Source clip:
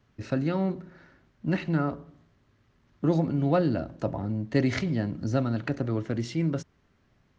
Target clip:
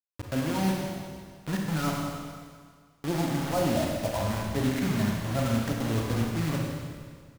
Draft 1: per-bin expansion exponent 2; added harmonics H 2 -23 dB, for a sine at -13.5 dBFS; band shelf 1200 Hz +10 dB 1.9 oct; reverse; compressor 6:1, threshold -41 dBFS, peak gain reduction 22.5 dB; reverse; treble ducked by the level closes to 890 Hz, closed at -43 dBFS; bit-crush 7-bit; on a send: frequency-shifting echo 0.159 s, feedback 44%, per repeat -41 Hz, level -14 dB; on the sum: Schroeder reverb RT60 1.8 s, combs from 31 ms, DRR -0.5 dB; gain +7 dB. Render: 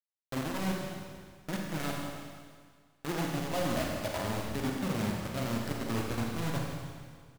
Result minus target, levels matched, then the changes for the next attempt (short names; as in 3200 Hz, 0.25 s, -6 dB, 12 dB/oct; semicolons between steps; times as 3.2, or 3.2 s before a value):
compressor: peak gain reduction +6.5 dB
change: compressor 6:1, threshold -33 dBFS, peak gain reduction 16 dB